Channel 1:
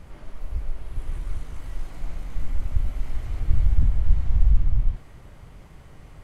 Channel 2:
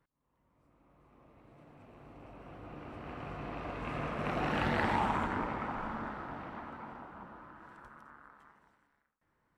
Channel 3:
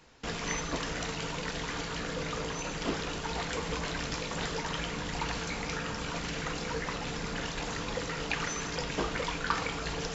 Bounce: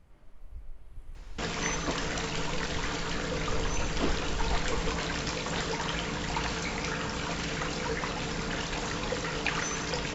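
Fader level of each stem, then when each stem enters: -15.5 dB, mute, +2.5 dB; 0.00 s, mute, 1.15 s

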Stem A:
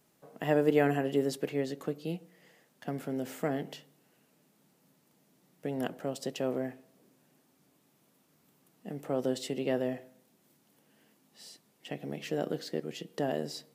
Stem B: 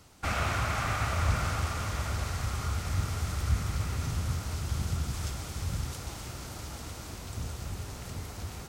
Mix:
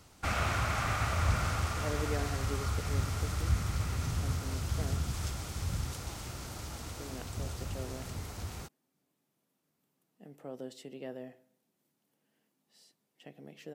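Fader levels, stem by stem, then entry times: -12.0 dB, -1.5 dB; 1.35 s, 0.00 s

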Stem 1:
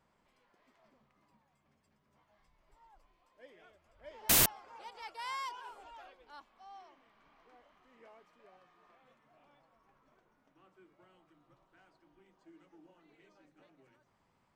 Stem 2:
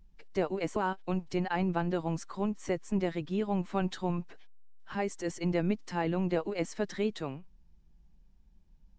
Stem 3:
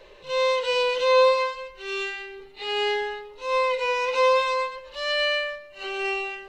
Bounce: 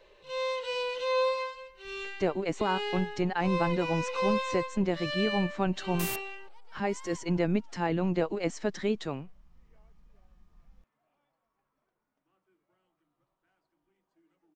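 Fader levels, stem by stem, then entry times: -11.0 dB, +2.0 dB, -9.5 dB; 1.70 s, 1.85 s, 0.00 s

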